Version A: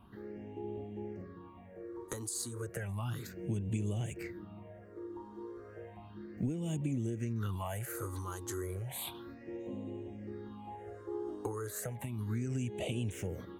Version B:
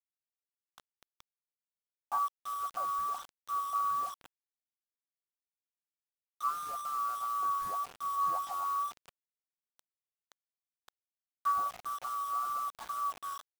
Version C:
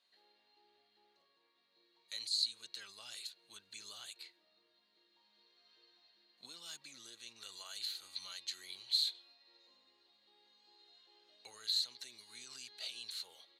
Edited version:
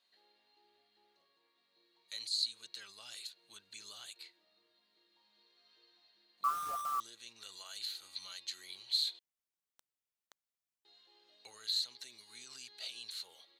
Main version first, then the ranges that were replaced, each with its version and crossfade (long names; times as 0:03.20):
C
0:06.44–0:07.00: punch in from B
0:09.19–0:10.85: punch in from B
not used: A